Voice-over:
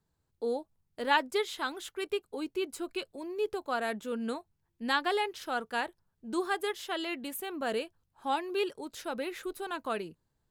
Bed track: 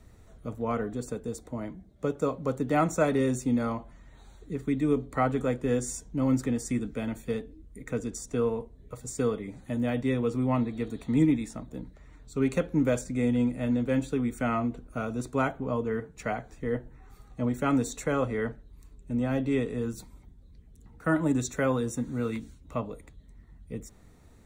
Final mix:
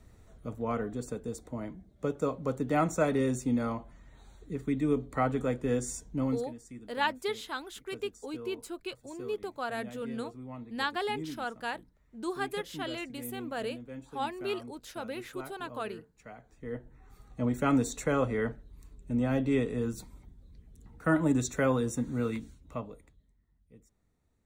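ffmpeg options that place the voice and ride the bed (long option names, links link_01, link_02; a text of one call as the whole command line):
ffmpeg -i stem1.wav -i stem2.wav -filter_complex "[0:a]adelay=5900,volume=-3dB[link_01];[1:a]volume=14dB,afade=type=out:start_time=6.19:duration=0.27:silence=0.188365,afade=type=in:start_time=16.34:duration=1.24:silence=0.149624,afade=type=out:start_time=22.2:duration=1.17:silence=0.112202[link_02];[link_01][link_02]amix=inputs=2:normalize=0" out.wav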